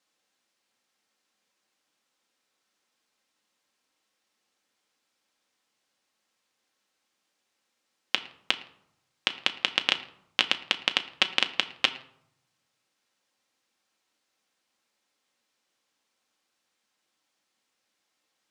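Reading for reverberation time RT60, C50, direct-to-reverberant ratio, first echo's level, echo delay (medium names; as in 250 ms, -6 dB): 0.75 s, 15.0 dB, 6.5 dB, no echo, no echo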